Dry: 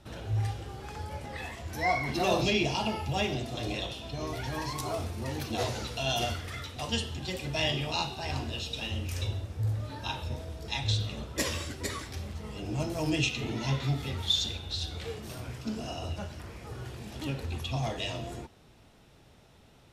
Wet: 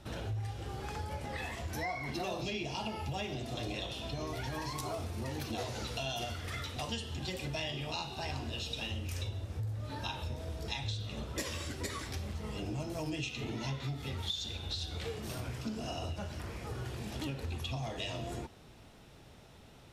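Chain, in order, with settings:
downward compressor 6 to 1, threshold −37 dBFS, peak gain reduction 14.5 dB
level +2 dB

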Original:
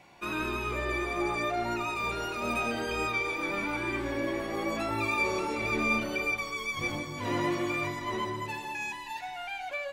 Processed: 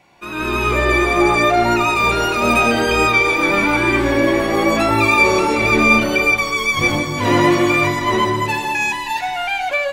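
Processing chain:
automatic gain control gain up to 14.5 dB
level +2 dB

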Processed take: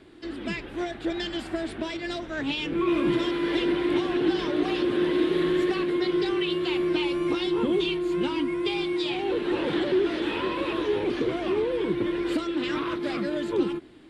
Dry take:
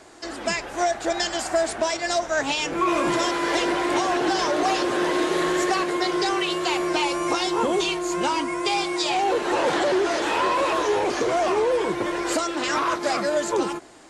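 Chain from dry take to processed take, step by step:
drawn EQ curve 330 Hz 0 dB, 690 Hz −17 dB, 3,500 Hz −5 dB, 6,600 Hz −27 dB, 9,700 Hz −17 dB
level +2.5 dB

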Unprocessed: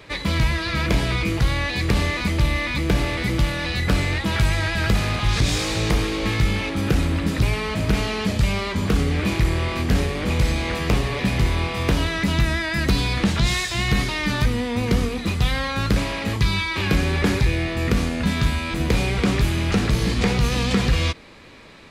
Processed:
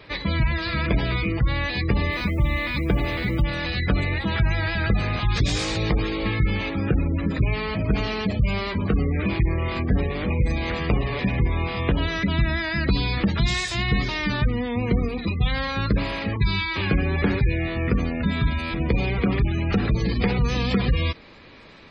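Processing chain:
gate on every frequency bin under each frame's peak −25 dB strong
0:02.11–0:03.41: background noise blue −57 dBFS
level −1.5 dB

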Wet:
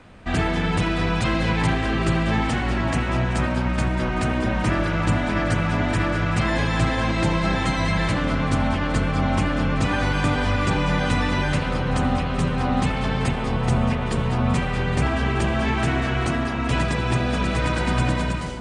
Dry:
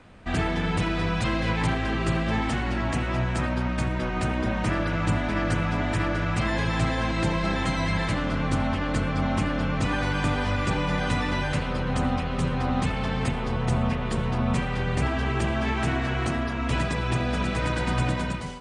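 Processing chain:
echo with a time of its own for lows and highs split 1,200 Hz, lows 711 ms, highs 190 ms, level −13 dB
level +3.5 dB

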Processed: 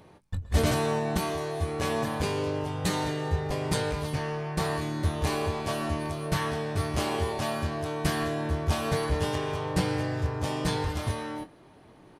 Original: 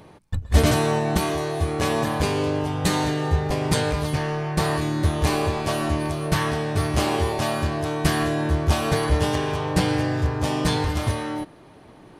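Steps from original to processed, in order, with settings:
double-tracking delay 22 ms −10.5 dB
level −6.5 dB

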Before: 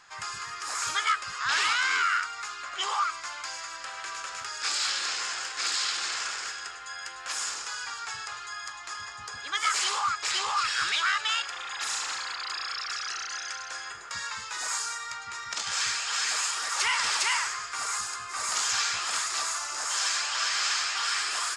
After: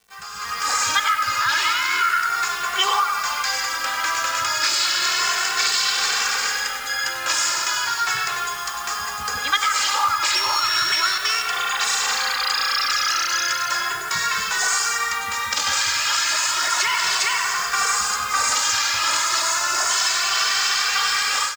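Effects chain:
0:10.35–0:11.47: samples sorted by size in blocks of 8 samples
low-pass filter 8,100 Hz 24 dB per octave
tape delay 94 ms, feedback 46%, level −6 dB, low-pass 2,400 Hz
four-comb reverb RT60 0.79 s, combs from 31 ms, DRR 19.5 dB
downward compressor 16 to 1, threshold −30 dBFS, peak gain reduction 11 dB
bit-depth reduction 8 bits, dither none
automatic gain control gain up to 15 dB
barber-pole flanger 2.2 ms +0.34 Hz
level +1.5 dB

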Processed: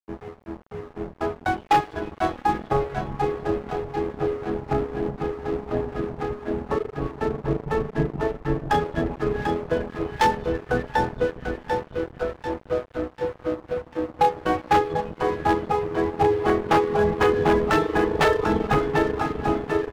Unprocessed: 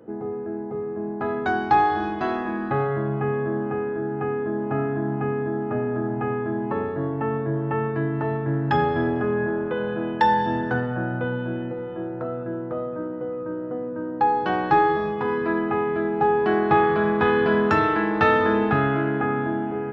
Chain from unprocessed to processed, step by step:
sub-octave generator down 2 octaves, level −2 dB
reverb reduction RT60 0.59 s
tuned comb filter 160 Hz, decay 0.24 s, harmonics all, mix 70%
repeating echo 743 ms, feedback 59%, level −5.5 dB
four-comb reverb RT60 3 s, combs from 30 ms, DRR 16.5 dB
reverb reduction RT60 0.94 s
dead-zone distortion −43 dBFS
0:07.63–0:08.24: parametric band 160 Hz +8 dB
wave folding −21.5 dBFS
dynamic equaliser 550 Hz, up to +5 dB, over −42 dBFS, Q 0.89
level +8 dB

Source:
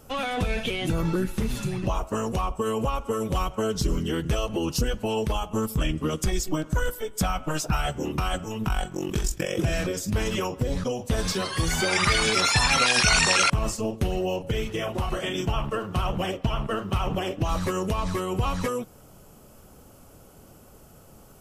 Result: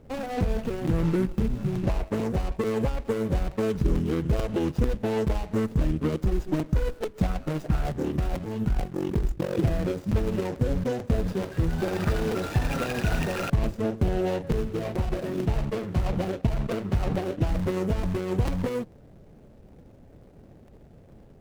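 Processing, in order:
running median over 41 samples
regular buffer underruns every 0.44 s, samples 256, repeat, from 0:00.87
windowed peak hold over 3 samples
level +2 dB

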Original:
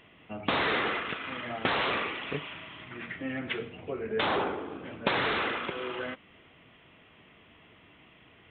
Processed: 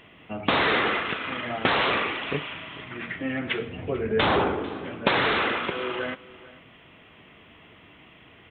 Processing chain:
0:03.69–0:04.69: low-shelf EQ 140 Hz +11.5 dB
single-tap delay 445 ms −19.5 dB
level +5.5 dB

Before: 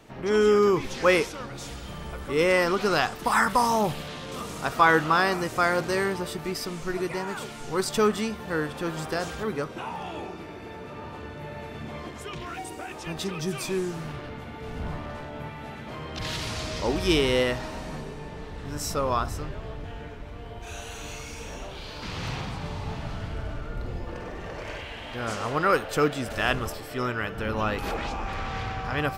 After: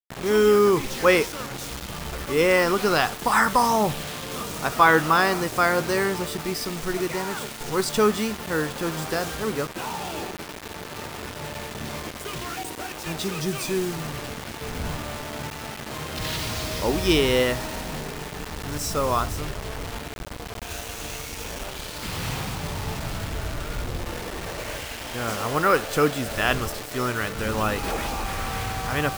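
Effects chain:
bit reduction 6 bits
level +2.5 dB

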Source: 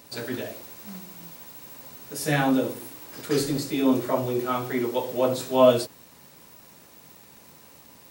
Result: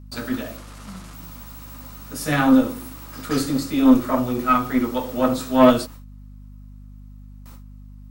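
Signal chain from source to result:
0:00.57–0:01.14: variable-slope delta modulation 64 kbit/s
noise gate with hold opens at −38 dBFS
thirty-one-band graphic EQ 250 Hz +10 dB, 400 Hz −8 dB, 1,250 Hz +11 dB
harmonic generator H 4 −18 dB, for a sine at −2.5 dBFS
mains hum 50 Hz, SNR 19 dB
level +1 dB

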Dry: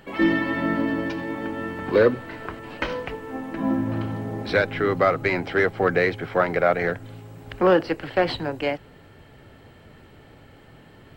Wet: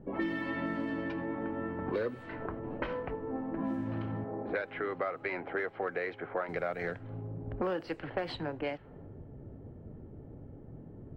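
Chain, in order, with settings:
0:04.24–0:06.49: bass and treble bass −13 dB, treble −14 dB
low-pass that shuts in the quiet parts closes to 350 Hz, open at −17.5 dBFS
downward compressor 4 to 1, threshold −37 dBFS, peak gain reduction 20 dB
level +2.5 dB

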